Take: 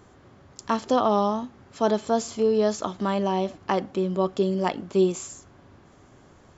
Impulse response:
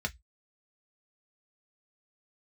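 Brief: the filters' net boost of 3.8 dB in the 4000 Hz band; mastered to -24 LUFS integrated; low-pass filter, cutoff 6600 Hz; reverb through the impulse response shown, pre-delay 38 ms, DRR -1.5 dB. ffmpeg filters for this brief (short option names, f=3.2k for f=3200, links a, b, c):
-filter_complex "[0:a]lowpass=6.6k,equalizer=f=4k:t=o:g=5.5,asplit=2[a][b];[1:a]atrim=start_sample=2205,adelay=38[c];[b][c]afir=irnorm=-1:irlink=0,volume=-3dB[d];[a][d]amix=inputs=2:normalize=0,volume=-3.5dB"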